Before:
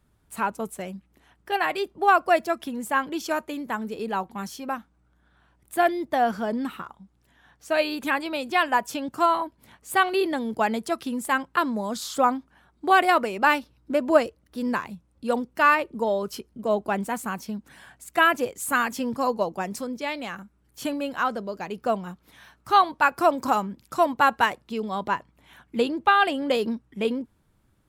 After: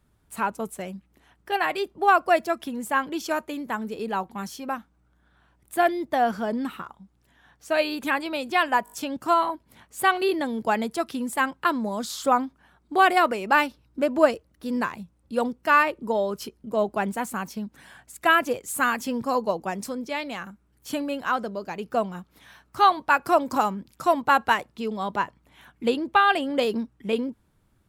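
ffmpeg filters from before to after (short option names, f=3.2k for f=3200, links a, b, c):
-filter_complex "[0:a]asplit=5[a][b][c][d][e];[a]atrim=end=8.862[f];[b]atrim=start=8.838:end=8.862[g];[c]atrim=start=8.838:end=8.862[h];[d]atrim=start=8.838:end=8.862[i];[e]atrim=start=8.838[j];[f][g]acrossfade=d=0.004:c1=hsin:c2=hsin[k];[k][h]acrossfade=d=0.004:c1=hsin:c2=hsin[l];[l][i]acrossfade=d=0.004:c1=hsin:c2=hsin[m];[m][j]acrossfade=d=0.004:c1=hsin:c2=hsin"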